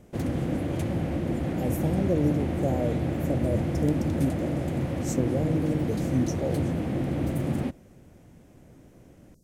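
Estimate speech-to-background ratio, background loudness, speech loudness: -1.0 dB, -29.0 LUFS, -30.0 LUFS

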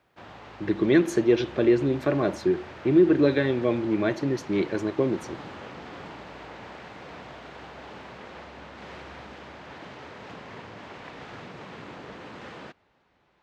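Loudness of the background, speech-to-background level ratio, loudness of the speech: -42.5 LUFS, 18.5 dB, -24.0 LUFS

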